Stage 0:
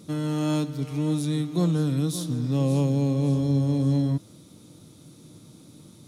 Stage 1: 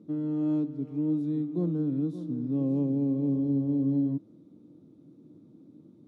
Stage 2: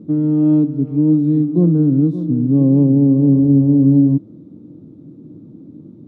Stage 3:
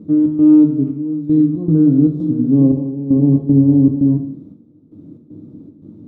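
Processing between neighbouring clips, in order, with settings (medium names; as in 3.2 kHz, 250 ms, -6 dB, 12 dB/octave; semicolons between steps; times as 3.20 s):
band-pass filter 290 Hz, Q 1.9
tilt EQ -3 dB/octave; trim +9 dB
trance gate "xx.xxxx...xx.x" 116 bpm -12 dB; plate-style reverb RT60 0.64 s, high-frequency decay 0.95×, DRR 3.5 dB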